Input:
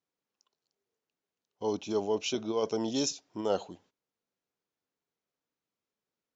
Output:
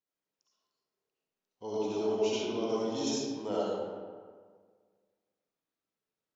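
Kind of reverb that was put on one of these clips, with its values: digital reverb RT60 1.7 s, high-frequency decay 0.55×, pre-delay 30 ms, DRR -7.5 dB; gain -9 dB

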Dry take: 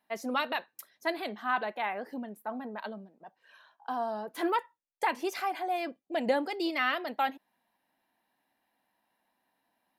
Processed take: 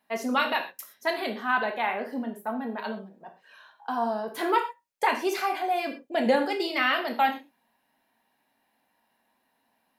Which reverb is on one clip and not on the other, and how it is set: non-linear reverb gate 0.15 s falling, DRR 2.5 dB; gain +4 dB

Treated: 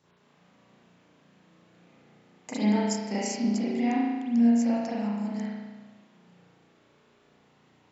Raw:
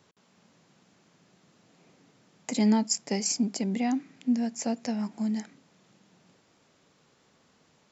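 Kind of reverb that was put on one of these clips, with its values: spring tank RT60 1.3 s, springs 34 ms, chirp 40 ms, DRR -9.5 dB; gain -7 dB

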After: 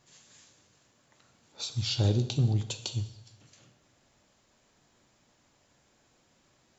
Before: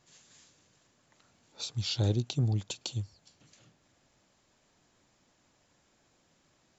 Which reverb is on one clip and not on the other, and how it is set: plate-style reverb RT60 0.84 s, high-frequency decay 1×, pre-delay 0 ms, DRR 8 dB; gain +1.5 dB

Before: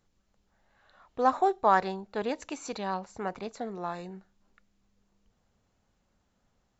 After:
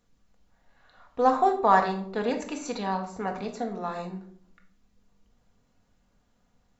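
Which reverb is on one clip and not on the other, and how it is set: shoebox room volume 800 m³, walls furnished, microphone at 1.8 m; gain +1 dB

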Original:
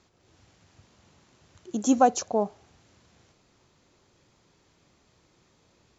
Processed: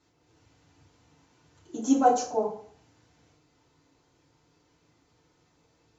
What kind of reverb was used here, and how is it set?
FDN reverb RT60 0.53 s, low-frequency decay 0.9×, high-frequency decay 0.65×, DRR -8 dB; gain -11.5 dB

